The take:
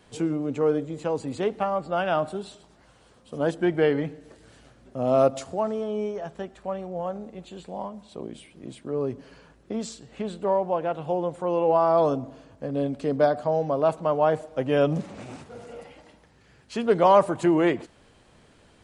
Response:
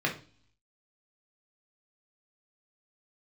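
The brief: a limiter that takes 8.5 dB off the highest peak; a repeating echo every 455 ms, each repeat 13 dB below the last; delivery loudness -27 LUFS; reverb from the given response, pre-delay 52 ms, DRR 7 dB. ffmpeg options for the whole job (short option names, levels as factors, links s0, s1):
-filter_complex "[0:a]alimiter=limit=0.188:level=0:latency=1,aecho=1:1:455|910|1365:0.224|0.0493|0.0108,asplit=2[s0][s1];[1:a]atrim=start_sample=2205,adelay=52[s2];[s1][s2]afir=irnorm=-1:irlink=0,volume=0.15[s3];[s0][s3]amix=inputs=2:normalize=0,volume=0.944"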